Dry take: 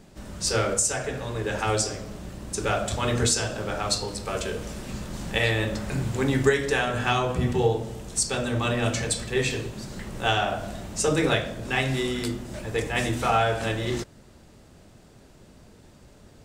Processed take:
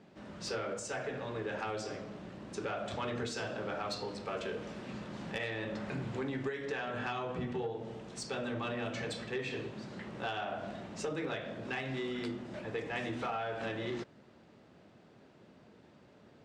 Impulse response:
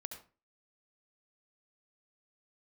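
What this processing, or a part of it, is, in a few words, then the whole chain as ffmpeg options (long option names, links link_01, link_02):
AM radio: -af "highpass=160,lowpass=3300,acompressor=threshold=-27dB:ratio=10,asoftclip=type=tanh:threshold=-21.5dB,volume=-5dB"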